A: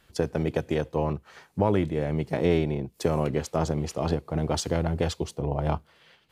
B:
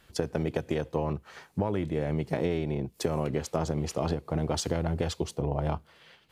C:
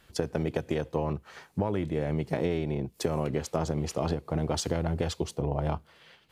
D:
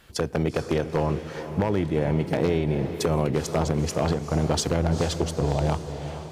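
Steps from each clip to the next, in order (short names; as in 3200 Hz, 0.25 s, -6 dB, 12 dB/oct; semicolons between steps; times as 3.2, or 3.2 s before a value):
compressor, threshold -26 dBFS, peak gain reduction 9 dB; gain +1.5 dB
nothing audible
wavefolder -19.5 dBFS; diffused feedback echo 0.453 s, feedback 48%, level -10 dB; gain +5.5 dB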